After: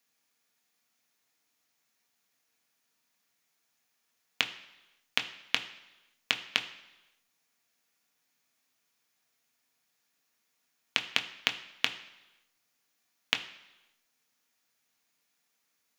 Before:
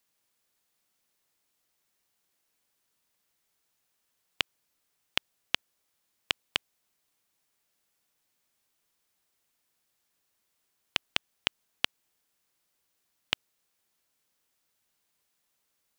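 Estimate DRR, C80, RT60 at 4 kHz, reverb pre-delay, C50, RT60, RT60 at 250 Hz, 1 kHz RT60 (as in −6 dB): 5.5 dB, 15.0 dB, 0.95 s, 3 ms, 13.0 dB, 1.0 s, 0.95 s, 1.0 s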